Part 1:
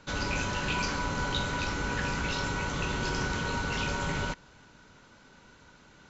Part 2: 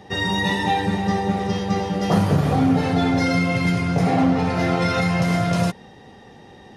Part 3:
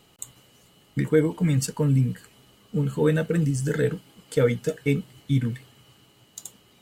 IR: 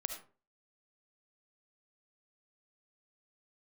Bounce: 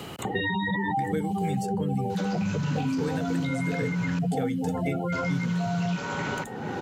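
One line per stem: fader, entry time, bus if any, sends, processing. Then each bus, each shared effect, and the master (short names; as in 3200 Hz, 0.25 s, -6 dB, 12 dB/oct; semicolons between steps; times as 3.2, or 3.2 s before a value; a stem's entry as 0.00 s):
+2.0 dB, 2.10 s, muted 4.19–5.12, bus A, send -14 dB, compressor 2:1, threshold -43 dBFS, peak gain reduction 9.5 dB
-1.5 dB, 0.25 s, bus A, no send, spectral gate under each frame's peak -10 dB strong
-9.0 dB, 0.00 s, no bus, no send, dry
bus A: 0.0 dB, HPF 120 Hz 12 dB/oct; limiter -22.5 dBFS, peak gain reduction 11 dB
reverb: on, RT60 0.40 s, pre-delay 30 ms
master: HPF 72 Hz; three-band squash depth 100%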